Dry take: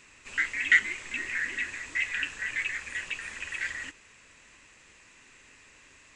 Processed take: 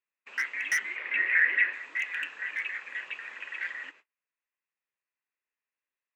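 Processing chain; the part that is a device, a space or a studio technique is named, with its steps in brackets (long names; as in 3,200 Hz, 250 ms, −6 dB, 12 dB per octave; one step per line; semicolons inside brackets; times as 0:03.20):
walkie-talkie (band-pass filter 480–2,400 Hz; hard clipping −23 dBFS, distortion −8 dB; noise gate −53 dBFS, range −36 dB)
0:00.96–0:01.73: graphic EQ with 10 bands 500 Hz +8 dB, 2,000 Hz +11 dB, 8,000 Hz −12 dB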